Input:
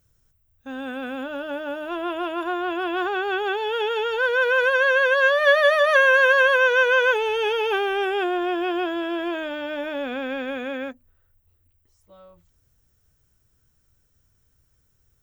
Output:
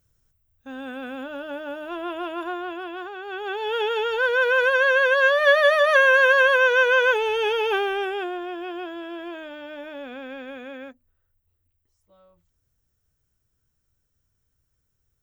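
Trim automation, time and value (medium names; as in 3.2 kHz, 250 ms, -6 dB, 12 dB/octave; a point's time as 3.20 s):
2.45 s -3 dB
3.17 s -11.5 dB
3.73 s 0 dB
7.79 s 0 dB
8.47 s -8 dB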